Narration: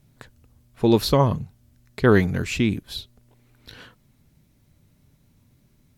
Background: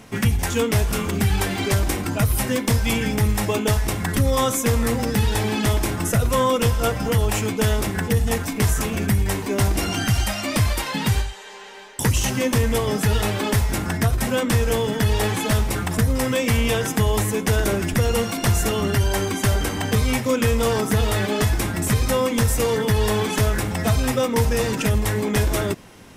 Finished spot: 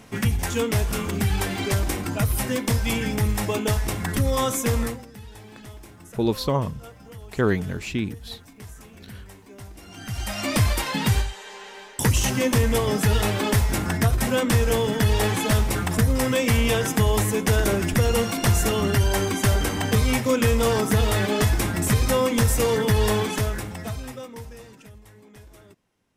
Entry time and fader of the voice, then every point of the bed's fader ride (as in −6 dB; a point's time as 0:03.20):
5.35 s, −5.0 dB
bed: 0:04.83 −3 dB
0:05.07 −22 dB
0:09.82 −22 dB
0:10.44 −0.5 dB
0:23.12 −0.5 dB
0:24.99 −27.5 dB